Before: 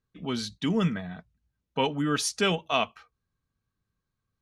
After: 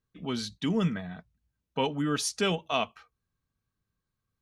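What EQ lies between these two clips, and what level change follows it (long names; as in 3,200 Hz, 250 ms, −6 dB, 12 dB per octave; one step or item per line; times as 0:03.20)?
dynamic equaliser 1,800 Hz, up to −3 dB, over −35 dBFS, Q 0.84
−1.5 dB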